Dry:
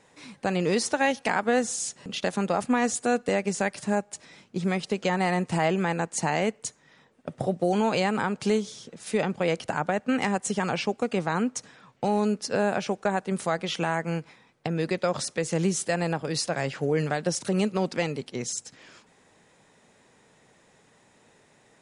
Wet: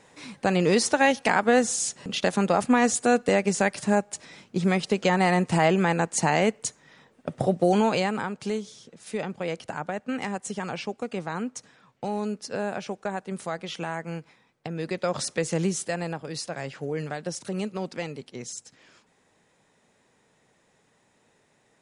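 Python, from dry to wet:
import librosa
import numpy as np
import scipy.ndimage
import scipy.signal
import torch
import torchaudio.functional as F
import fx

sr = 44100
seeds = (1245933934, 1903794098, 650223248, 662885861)

y = fx.gain(x, sr, db=fx.line((7.74, 3.5), (8.36, -5.0), (14.74, -5.0), (15.32, 2.0), (16.23, -5.5)))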